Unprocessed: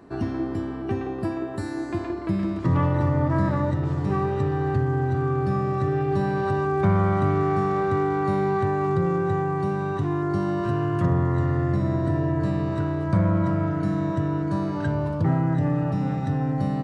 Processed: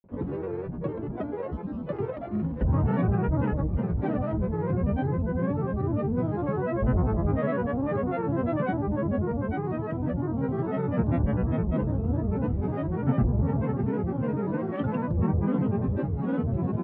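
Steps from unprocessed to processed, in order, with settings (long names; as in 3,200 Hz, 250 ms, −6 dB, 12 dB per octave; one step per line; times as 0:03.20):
tilt shelving filter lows +6.5 dB, about 1,500 Hz
granular cloud, pitch spread up and down by 12 semitones
high-frequency loss of the air 320 metres
level −7.5 dB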